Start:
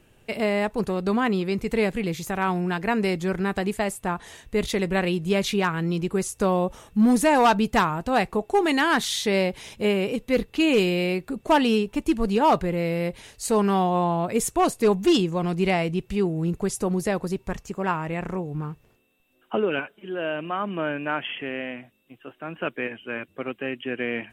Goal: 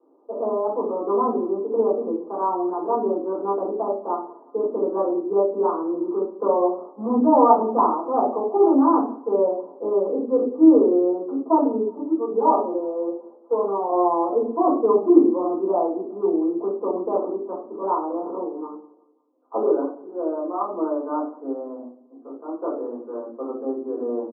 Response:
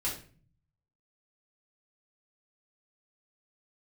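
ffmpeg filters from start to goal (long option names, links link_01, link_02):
-filter_complex "[0:a]asettb=1/sr,asplit=3[link_01][link_02][link_03];[link_01]atrim=end=11.334[link_04];[link_02]atrim=start=11.33:end=13.89,asetpts=PTS-STARTPTS,afade=type=in:duration=0.004:curve=qsin,afade=type=out:start_time=2.556:duration=0.004:curve=qsin,flanger=delay=1.4:depth=3.7:regen=34:speed=1.3:shape=sinusoidal[link_05];[link_03]atrim=start=13.886[link_06];[link_04][link_05]acrossfade=duration=0.004:curve1=hsin:curve2=qsin[link_07];[link_07][link_06]acrossfade=duration=0.004:curve1=qsin:curve2=hsin,asuperpass=centerf=530:order=20:qfactor=0.56,aecho=1:1:180|360|540:0.0708|0.034|0.0163[link_08];[1:a]atrim=start_sample=2205,afade=type=out:start_time=0.32:duration=0.01,atrim=end_sample=14553[link_09];[link_08][link_09]afir=irnorm=-1:irlink=0"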